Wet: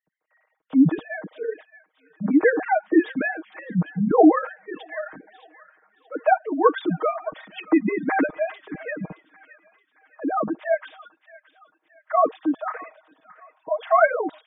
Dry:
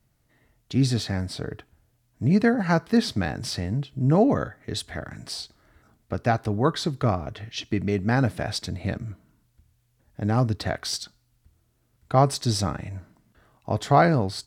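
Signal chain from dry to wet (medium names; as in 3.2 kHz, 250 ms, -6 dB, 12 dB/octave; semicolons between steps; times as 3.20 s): formants replaced by sine waves; low-pass 2.8 kHz 12 dB/octave; comb 6.4 ms, depth 90%; on a send: feedback echo behind a high-pass 622 ms, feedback 43%, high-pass 1.5 kHz, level -12.5 dB; on the sum: spectral gate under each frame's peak -30 dB strong; tape noise reduction on one side only decoder only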